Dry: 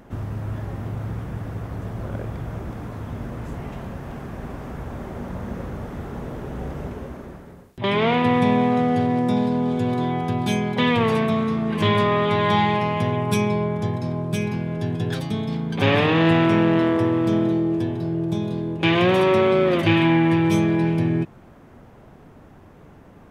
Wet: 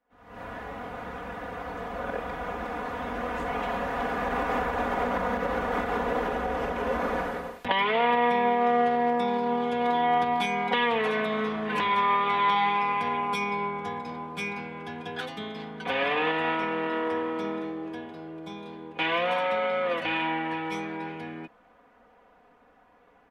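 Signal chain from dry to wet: Doppler pass-by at 6.24, 9 m/s, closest 2.8 m; recorder AGC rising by 74 dB/s; three-band isolator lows -17 dB, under 460 Hz, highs -12 dB, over 3700 Hz; comb 4.1 ms, depth 97%; gain -3.5 dB

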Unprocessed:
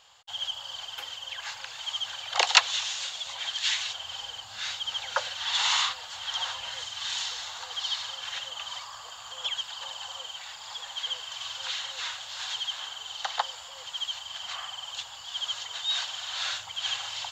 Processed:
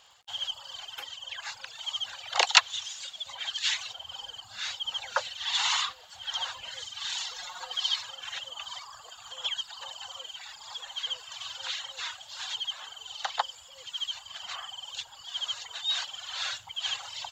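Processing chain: reverb removal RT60 1.7 s; 7.34–8.01 comb 5.5 ms, depth 95%; crackle 46/s -51 dBFS

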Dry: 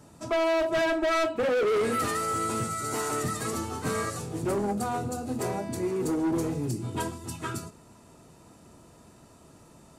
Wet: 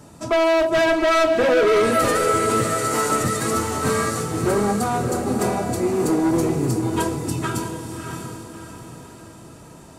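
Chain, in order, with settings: diffused feedback echo 0.648 s, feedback 44%, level -6 dB; gain +7.5 dB

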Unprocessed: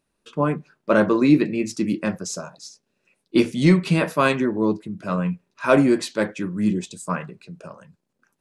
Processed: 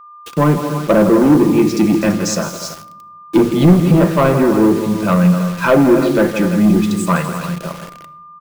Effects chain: treble ducked by the level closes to 1000 Hz, closed at -15 dBFS; in parallel at +1.5 dB: limiter -13.5 dBFS, peak gain reduction 8.5 dB; on the sum: tapped delay 0.162/0.247/0.334 s -12.5/-13/-13.5 dB; sample leveller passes 2; bit-crush 5-bit; whine 1200 Hz -36 dBFS; shoebox room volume 3100 m³, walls furnished, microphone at 0.78 m; gain -3 dB

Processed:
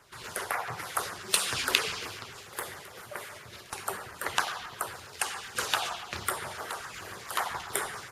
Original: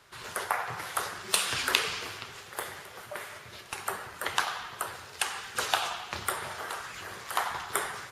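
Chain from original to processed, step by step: LFO notch saw down 7.3 Hz 570–4400 Hz; gain +1 dB

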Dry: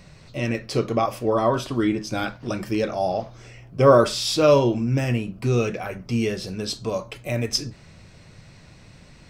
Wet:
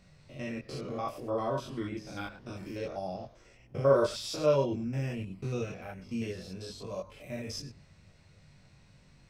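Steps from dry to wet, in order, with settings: stepped spectrum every 0.1 s; chorus voices 4, 0.91 Hz, delay 21 ms, depth 1.1 ms; de-hum 47.82 Hz, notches 2; gain -8 dB

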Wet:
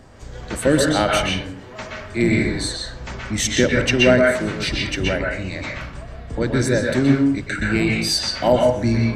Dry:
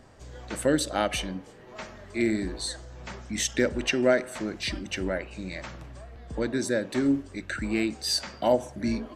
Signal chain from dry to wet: octaver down 1 oct, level -2 dB; on a send: bell 2300 Hz +10 dB 2.7 oct + reverb RT60 0.40 s, pre-delay 0.117 s, DRR -2 dB; on the sum: gain +6 dB

